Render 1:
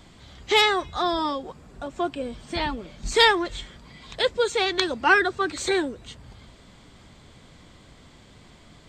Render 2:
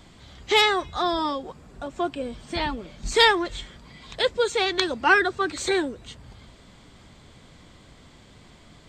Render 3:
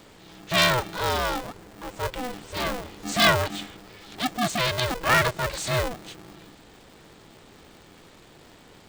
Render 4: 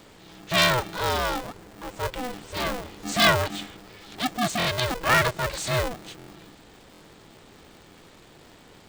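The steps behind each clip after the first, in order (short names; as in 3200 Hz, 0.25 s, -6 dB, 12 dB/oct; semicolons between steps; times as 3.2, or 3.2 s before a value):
nothing audible
transient shaper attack -7 dB, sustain +2 dB; polarity switched at an audio rate 250 Hz
stuck buffer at 4.58/6.18/6.92, samples 1024, times 3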